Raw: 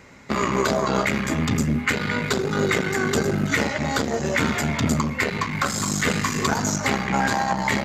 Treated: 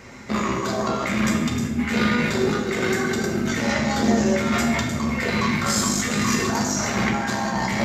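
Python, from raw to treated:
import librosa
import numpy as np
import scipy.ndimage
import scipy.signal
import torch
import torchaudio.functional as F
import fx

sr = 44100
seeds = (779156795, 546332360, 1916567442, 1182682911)

y = fx.peak_eq(x, sr, hz=5600.0, db=4.5, octaves=0.24)
y = fx.over_compress(y, sr, threshold_db=-26.0, ratio=-1.0)
y = fx.rev_fdn(y, sr, rt60_s=0.91, lf_ratio=1.2, hf_ratio=0.9, size_ms=26.0, drr_db=0.5)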